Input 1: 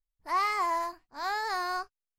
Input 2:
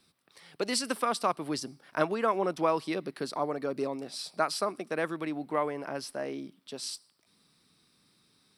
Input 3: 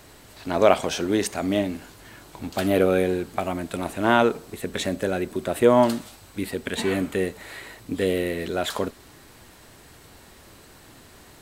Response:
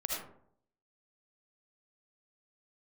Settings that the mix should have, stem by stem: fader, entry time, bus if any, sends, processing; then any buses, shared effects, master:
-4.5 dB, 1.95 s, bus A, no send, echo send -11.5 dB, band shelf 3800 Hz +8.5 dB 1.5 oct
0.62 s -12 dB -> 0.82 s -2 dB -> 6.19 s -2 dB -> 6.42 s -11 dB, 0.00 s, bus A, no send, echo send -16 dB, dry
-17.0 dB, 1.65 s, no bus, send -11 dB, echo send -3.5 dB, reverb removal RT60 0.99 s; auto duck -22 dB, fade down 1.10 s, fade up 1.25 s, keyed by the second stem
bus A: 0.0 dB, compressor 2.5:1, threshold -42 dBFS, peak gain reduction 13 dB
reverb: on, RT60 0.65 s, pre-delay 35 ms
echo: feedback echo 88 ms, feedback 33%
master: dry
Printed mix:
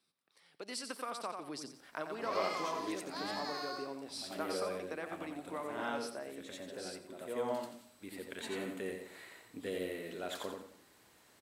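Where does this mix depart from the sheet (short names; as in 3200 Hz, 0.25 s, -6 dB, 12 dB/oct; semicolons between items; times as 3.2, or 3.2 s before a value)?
stem 3: missing reverb removal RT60 0.99 s; master: extra HPF 260 Hz 6 dB/oct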